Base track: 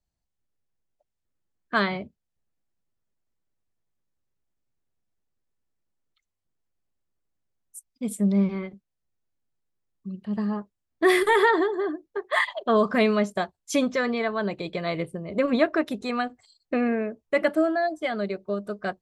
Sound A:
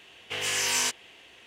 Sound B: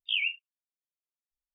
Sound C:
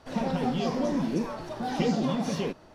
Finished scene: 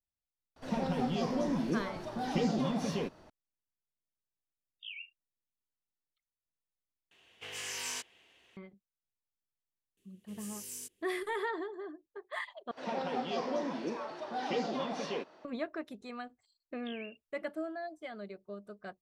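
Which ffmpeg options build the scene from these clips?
ffmpeg -i bed.wav -i cue0.wav -i cue1.wav -i cue2.wav -filter_complex "[3:a]asplit=2[link_01][link_02];[2:a]asplit=2[link_03][link_04];[1:a]asplit=2[link_05][link_06];[0:a]volume=-16dB[link_07];[link_06]firequalizer=gain_entry='entry(360,0);entry(730,-24);entry(1300,-21);entry(10000,7)':delay=0.05:min_phase=1[link_08];[link_02]highpass=380,lowpass=4900[link_09];[link_04]acompressor=threshold=-44dB:ratio=6:attack=3.2:release=140:knee=1:detection=peak[link_10];[link_07]asplit=3[link_11][link_12][link_13];[link_11]atrim=end=7.114[link_14];[link_05]atrim=end=1.46,asetpts=PTS-STARTPTS,volume=-12.5dB[link_15];[link_12]atrim=start=8.566:end=12.714[link_16];[link_09]atrim=end=2.74,asetpts=PTS-STARTPTS,volume=-3dB[link_17];[link_13]atrim=start=15.446[link_18];[link_01]atrim=end=2.74,asetpts=PTS-STARTPTS,volume=-4.5dB,afade=type=in:duration=0.004:curve=hsin,afade=type=out:start_time=2.736:duration=0.004:curve=hsin,adelay=560[link_19];[link_03]atrim=end=1.54,asetpts=PTS-STARTPTS,volume=-16.5dB,afade=type=in:duration=0.004:curve=hsin,afade=type=out:start_time=1.536:duration=0.004:curve=hsin,adelay=4740[link_20];[link_08]atrim=end=1.46,asetpts=PTS-STARTPTS,volume=-14.5dB,afade=type=in:duration=0.004:curve=hsin,afade=type=out:start_time=1.456:duration=0.004:curve=hsin,adelay=9970[link_21];[link_10]atrim=end=1.54,asetpts=PTS-STARTPTS,volume=-3dB,afade=type=in:duration=0.004:curve=hsin,afade=type=out:start_time=1.536:duration=0.004:curve=hsin,adelay=16780[link_22];[link_14][link_15]acrossfade=duration=0.004:curve1=hsin:curve2=hsin[link_23];[link_23][link_16]acrossfade=duration=0.004:curve1=hsin:curve2=hsin[link_24];[link_24][link_17]acrossfade=duration=0.004:curve1=hsin:curve2=hsin[link_25];[link_25][link_18]acrossfade=duration=0.004:curve1=hsin:curve2=hsin[link_26];[link_26][link_19][link_20][link_21][link_22]amix=inputs=5:normalize=0" out.wav

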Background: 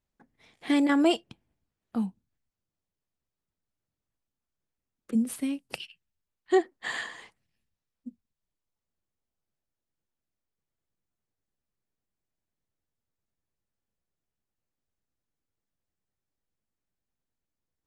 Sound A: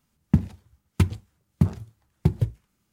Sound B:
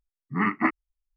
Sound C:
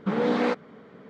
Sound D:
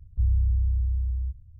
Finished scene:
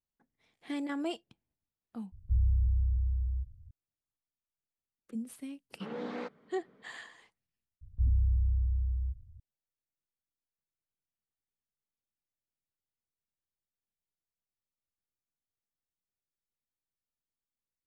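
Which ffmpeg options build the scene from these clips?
ffmpeg -i bed.wav -i cue0.wav -i cue1.wav -i cue2.wav -i cue3.wav -filter_complex "[4:a]asplit=2[link_01][link_02];[0:a]volume=-12.5dB[link_03];[link_01]atrim=end=1.59,asetpts=PTS-STARTPTS,volume=-4.5dB,afade=type=in:duration=0.004:curve=hsin,afade=type=out:start_time=1.586:duration=0.004:curve=hsin,adelay=2120[link_04];[3:a]atrim=end=1.09,asetpts=PTS-STARTPTS,volume=-15dB,afade=type=in:duration=0.004:curve=hsin,afade=type=out:start_time=1.086:duration=0.004:curve=hsin,adelay=5740[link_05];[link_02]atrim=end=1.59,asetpts=PTS-STARTPTS,volume=-4.5dB,afade=type=in:duration=0.004:curve=hsin,afade=type=out:start_time=1.586:duration=0.004:curve=hsin,adelay=7810[link_06];[link_03][link_04][link_05][link_06]amix=inputs=4:normalize=0" out.wav

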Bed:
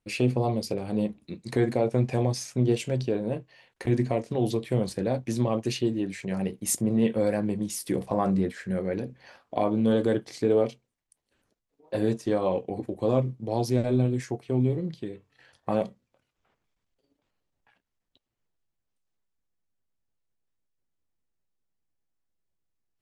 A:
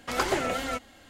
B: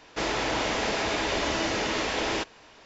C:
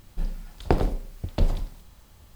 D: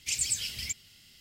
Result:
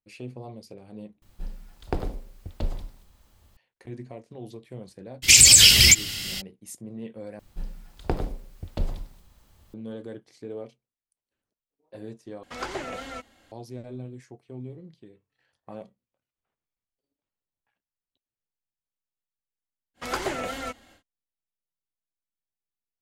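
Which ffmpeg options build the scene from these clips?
ffmpeg -i bed.wav -i cue0.wav -i cue1.wav -i cue2.wav -i cue3.wav -filter_complex "[3:a]asplit=2[link_01][link_02];[1:a]asplit=2[link_03][link_04];[0:a]volume=-14.5dB[link_05];[link_01]equalizer=frequency=150:width_type=o:width=0.22:gain=-6.5[link_06];[4:a]alimiter=level_in=26dB:limit=-1dB:release=50:level=0:latency=1[link_07];[link_03]acrossover=split=8100[link_08][link_09];[link_09]acompressor=threshold=-56dB:ratio=4:attack=1:release=60[link_10];[link_08][link_10]amix=inputs=2:normalize=0[link_11];[link_05]asplit=4[link_12][link_13][link_14][link_15];[link_12]atrim=end=1.224[link_16];[link_06]atrim=end=2.35,asetpts=PTS-STARTPTS,volume=-6.5dB[link_17];[link_13]atrim=start=3.566:end=7.394[link_18];[link_02]atrim=end=2.35,asetpts=PTS-STARTPTS,volume=-5.5dB[link_19];[link_14]atrim=start=9.736:end=12.434[link_20];[link_11]atrim=end=1.09,asetpts=PTS-STARTPTS,volume=-6.5dB[link_21];[link_15]atrim=start=13.516[link_22];[link_07]atrim=end=1.2,asetpts=PTS-STARTPTS,volume=-1.5dB,afade=type=in:duration=0.02,afade=type=out:start_time=1.18:duration=0.02,adelay=5220[link_23];[link_04]atrim=end=1.09,asetpts=PTS-STARTPTS,volume=-2.5dB,afade=type=in:duration=0.1,afade=type=out:start_time=0.99:duration=0.1,adelay=19940[link_24];[link_16][link_17]acrossfade=duration=0.004:curve1=hsin:curve2=hsin[link_25];[link_25][link_18]acrossfade=duration=0.004:curve1=hsin:curve2=hsin[link_26];[link_26][link_19]acrossfade=duration=0.004:curve1=hsin:curve2=hsin[link_27];[link_27][link_20]acrossfade=duration=0.004:curve1=hsin:curve2=hsin[link_28];[link_28][link_21]acrossfade=duration=0.004:curve1=hsin:curve2=hsin[link_29];[link_29][link_22]acrossfade=duration=0.004:curve1=hsin:curve2=hsin[link_30];[link_30][link_23][link_24]amix=inputs=3:normalize=0" out.wav

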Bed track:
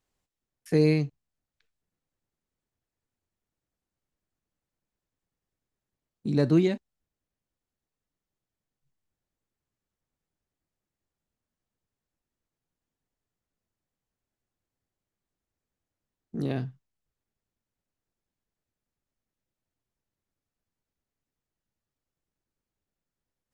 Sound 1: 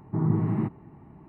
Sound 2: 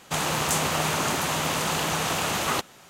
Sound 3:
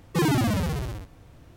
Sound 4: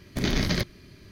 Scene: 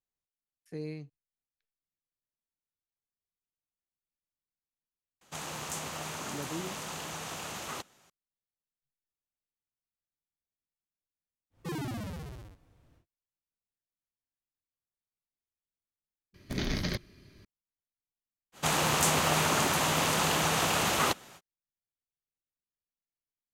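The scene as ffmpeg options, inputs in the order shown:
ffmpeg -i bed.wav -i cue0.wav -i cue1.wav -i cue2.wav -i cue3.wav -filter_complex "[2:a]asplit=2[link_01][link_02];[0:a]volume=-17.5dB[link_03];[link_01]equalizer=frequency=6500:width_type=o:width=0.79:gain=3[link_04];[link_03]asplit=2[link_05][link_06];[link_05]atrim=end=16.344[link_07];[4:a]atrim=end=1.11,asetpts=PTS-STARTPTS,volume=-7dB[link_08];[link_06]atrim=start=17.446[link_09];[link_04]atrim=end=2.89,asetpts=PTS-STARTPTS,volume=-14dB,afade=type=in:duration=0.004:curve=hsin,afade=type=out:start_time=2.886:duration=0.004:curve=hsin,adelay=229761S[link_10];[3:a]atrim=end=1.56,asetpts=PTS-STARTPTS,volume=-14dB,afade=type=in:duration=0.1,afade=type=out:start_time=1.46:duration=0.1,adelay=11500[link_11];[link_02]atrim=end=2.89,asetpts=PTS-STARTPTS,volume=-1.5dB,afade=type=in:duration=0.05,afade=type=out:start_time=2.84:duration=0.05,adelay=18520[link_12];[link_07][link_08]acrossfade=duration=0.004:curve1=hsin:curve2=hsin[link_13];[link_13][link_09]acrossfade=duration=0.004:curve1=hsin:curve2=hsin[link_14];[link_14][link_10][link_11][link_12]amix=inputs=4:normalize=0" out.wav

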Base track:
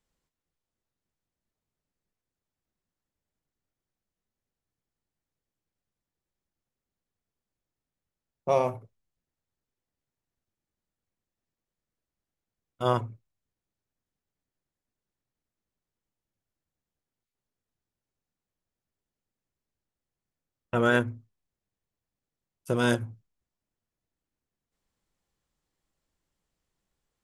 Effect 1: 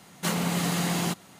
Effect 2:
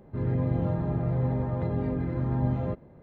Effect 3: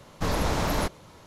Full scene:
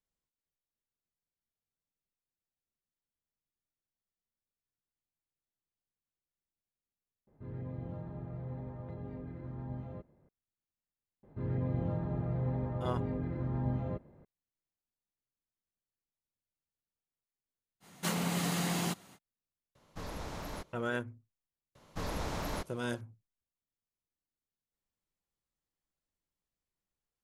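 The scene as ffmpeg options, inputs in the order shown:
ffmpeg -i bed.wav -i cue0.wav -i cue1.wav -i cue2.wav -filter_complex "[2:a]asplit=2[link_01][link_02];[3:a]asplit=2[link_03][link_04];[0:a]volume=-12dB,asplit=2[link_05][link_06];[link_05]atrim=end=7.274[link_07];[link_01]atrim=end=3.02,asetpts=PTS-STARTPTS,volume=-15dB[link_08];[link_06]atrim=start=10.286[link_09];[link_02]atrim=end=3.02,asetpts=PTS-STARTPTS,volume=-7dB,afade=type=in:duration=0.004:curve=hsin,afade=type=out:start_time=3.016:duration=0.004:curve=hsin,adelay=11230[link_10];[1:a]atrim=end=1.39,asetpts=PTS-STARTPTS,volume=-6dB,afade=type=in:duration=0.05,afade=type=out:start_time=1.34:duration=0.05,adelay=784980S[link_11];[link_03]atrim=end=1.26,asetpts=PTS-STARTPTS,volume=-16dB,afade=type=in:duration=0.004:curve=hsin,afade=type=out:start_time=1.256:duration=0.004:curve=hsin,adelay=19750[link_12];[link_04]atrim=end=1.26,asetpts=PTS-STARTPTS,volume=-11dB,afade=type=in:duration=0.004:curve=hsin,afade=type=out:start_time=1.256:duration=0.004:curve=hsin,adelay=21750[link_13];[link_07][link_08]acrossfade=duration=0.004:curve1=hsin:curve2=hsin[link_14];[link_14][link_09]acrossfade=duration=0.004:curve1=hsin:curve2=hsin[link_15];[link_15][link_10][link_11][link_12][link_13]amix=inputs=5:normalize=0" out.wav

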